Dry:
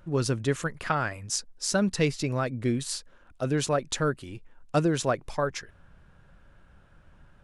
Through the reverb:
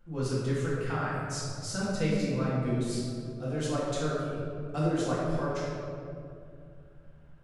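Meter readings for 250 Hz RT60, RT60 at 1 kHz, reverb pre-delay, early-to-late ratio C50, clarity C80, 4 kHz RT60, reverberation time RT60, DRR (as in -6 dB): 3.1 s, 2.2 s, 4 ms, -2.5 dB, -0.5 dB, 1.2 s, 2.5 s, -9.5 dB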